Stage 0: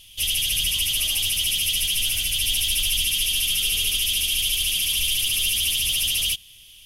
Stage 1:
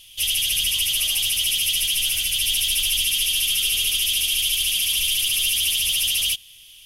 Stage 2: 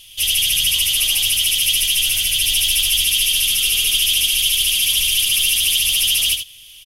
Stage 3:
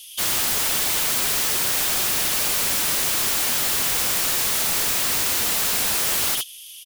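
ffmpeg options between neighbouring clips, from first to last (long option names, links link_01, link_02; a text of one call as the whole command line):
ffmpeg -i in.wav -af "lowshelf=frequency=490:gain=-7,volume=1.5dB" out.wav
ffmpeg -i in.wav -af "aecho=1:1:77:0.422,volume=4dB" out.wav
ffmpeg -i in.wav -af "bass=frequency=250:gain=-13,treble=frequency=4000:gain=10,aeval=exprs='(mod(3.98*val(0)+1,2)-1)/3.98':channel_layout=same,volume=-5dB" out.wav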